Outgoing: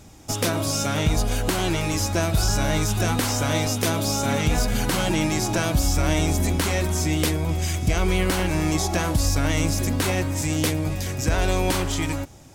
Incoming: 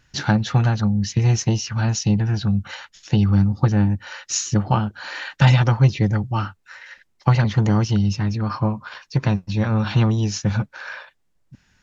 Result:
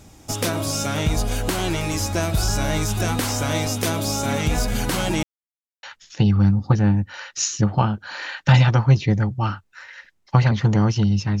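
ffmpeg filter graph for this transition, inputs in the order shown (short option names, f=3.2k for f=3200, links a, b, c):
-filter_complex "[0:a]apad=whole_dur=11.4,atrim=end=11.4,asplit=2[a][b];[a]atrim=end=5.23,asetpts=PTS-STARTPTS,afade=t=out:st=5.226:d=0.004:c=hsin[c];[b]atrim=start=5.23:end=5.83,asetpts=PTS-STARTPTS,volume=0[d];[1:a]atrim=start=2.76:end=8.33,asetpts=PTS-STARTPTS,afade=t=in:d=0.004:c=hsin[e];[c][d][e]concat=n=3:v=0:a=1"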